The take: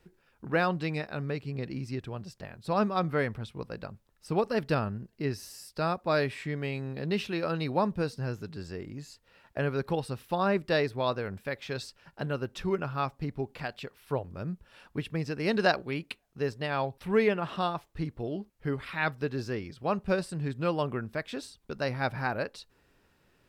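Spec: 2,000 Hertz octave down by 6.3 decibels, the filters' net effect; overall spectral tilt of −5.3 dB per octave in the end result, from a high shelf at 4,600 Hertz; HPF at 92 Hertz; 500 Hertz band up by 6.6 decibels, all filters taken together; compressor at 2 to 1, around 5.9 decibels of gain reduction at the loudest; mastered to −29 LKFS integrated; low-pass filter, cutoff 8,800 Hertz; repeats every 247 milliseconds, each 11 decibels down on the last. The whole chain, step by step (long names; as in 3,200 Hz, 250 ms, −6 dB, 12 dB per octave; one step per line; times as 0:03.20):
high-pass filter 92 Hz
low-pass filter 8,800 Hz
parametric band 500 Hz +8.5 dB
parametric band 2,000 Hz −8 dB
high-shelf EQ 4,600 Hz −7 dB
downward compressor 2 to 1, threshold −25 dBFS
repeating echo 247 ms, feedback 28%, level −11 dB
level +2 dB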